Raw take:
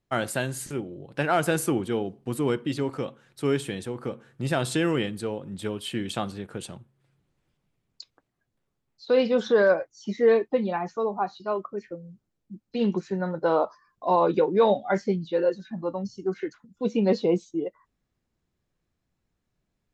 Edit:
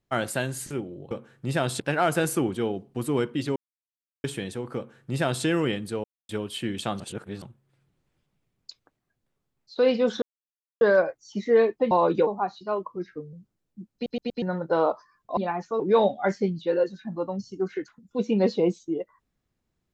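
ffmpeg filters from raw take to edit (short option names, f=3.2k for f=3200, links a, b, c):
-filter_complex "[0:a]asplit=20[a][b][c][d][e][f][g][h][i][j][k][l][m][n][o][p][q][r][s][t];[a]atrim=end=1.112[u];[b]atrim=start=4.068:end=4.762[v];[c]atrim=start=1.108:end=2.87,asetpts=PTS-STARTPTS,afade=t=out:st=1.758:d=0.004:c=hsin[w];[d]atrim=start=2.87:end=3.55,asetpts=PTS-STARTPTS,volume=0[x];[e]atrim=start=3.55:end=5.35,asetpts=PTS-STARTPTS,afade=t=in:d=0.004:c=hsin,afade=t=out:st=1.796:d=0.004:c=hsin[y];[f]atrim=start=5.35:end=5.6,asetpts=PTS-STARTPTS,volume=0[z];[g]atrim=start=5.6:end=6.312,asetpts=PTS-STARTPTS,afade=t=in:d=0.004:c=hsin[aa];[h]atrim=start=6.308:end=6.732,asetpts=PTS-STARTPTS,areverse[ab];[i]atrim=start=6.728:end=9.53,asetpts=PTS-STARTPTS,afade=t=out:st=2.798:d=0.004:c=hsin,apad=pad_dur=0.59[ac];[j]atrim=start=9.53:end=10.632,asetpts=PTS-STARTPTS,afade=t=in:d=0.004:c=hsin[ad];[k]atrim=start=14.098:end=14.462[ae];[l]atrim=start=11.058:end=11.624[af];[m]atrim=start=11.62:end=12.06,asetpts=PTS-STARTPTS,asetrate=38808,aresample=44100[ag];[n]atrim=start=12.056:end=12.792[ah];[o]atrim=start=12.668:end=12.792[ai];[p]atrim=start=12.668:end=12.792[aj];[q]atrim=start=12.668:end=12.792[ak];[r]atrim=start=13.148:end=14.102[al];[s]atrim=start=10.628:end=11.062[am];[t]atrim=start=14.458[an];[u][v]acrossfade=d=0.004:c1=hsin:c2=hsin[ao];[w][x][y][z][aa]concat=n=5:v=0:a=1[ap];[ao][ap]acrossfade=d=0.004:c1=hsin:c2=hsin[aq];[aq][ab]acrossfade=d=0.004:c1=hsin:c2=hsin[ar];[ac][ad]concat=n=2:v=0:a=1[as];[ar][as]acrossfade=d=0.004:c1=hsin:c2=hsin[at];[at][ae]acrossfade=d=0.004:c1=hsin:c2=hsin[au];[au][af]acrossfade=d=0.004:c1=hsin:c2=hsin[av];[av][ag]acrossfade=d=0.004:c1=hsin:c2=hsin[aw];[aw][ah]acrossfade=d=0.004:c1=hsin:c2=hsin[ax];[ax][ai]acrossfade=d=0.004:c1=hsin:c2=hsin[ay];[ay][aj]acrossfade=d=0.004:c1=hsin:c2=hsin[az];[az][ak]acrossfade=d=0.004:c1=hsin:c2=hsin[ba];[ba][al]acrossfade=d=0.004:c1=hsin:c2=hsin[bb];[bb][am]acrossfade=d=0.004:c1=hsin:c2=hsin[bc];[bc][an]acrossfade=d=0.004:c1=hsin:c2=hsin"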